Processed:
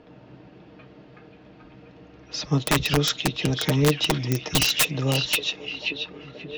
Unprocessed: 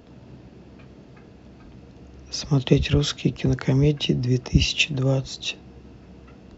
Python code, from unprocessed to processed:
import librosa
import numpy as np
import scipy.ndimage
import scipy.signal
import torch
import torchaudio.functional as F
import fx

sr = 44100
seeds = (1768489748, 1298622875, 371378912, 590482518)

y = fx.env_lowpass(x, sr, base_hz=2900.0, full_db=-17.0)
y = fx.low_shelf(y, sr, hz=230.0, db=-10.0)
y = fx.echo_stepped(y, sr, ms=532, hz=3400.0, octaves=-0.7, feedback_pct=70, wet_db=-4.0)
y = (np.mod(10.0 ** (15.0 / 20.0) * y + 1.0, 2.0) - 1.0) / 10.0 ** (15.0 / 20.0)
y = y + 0.43 * np.pad(y, (int(6.5 * sr / 1000.0), 0))[:len(y)]
y = F.gain(torch.from_numpy(y), 2.0).numpy()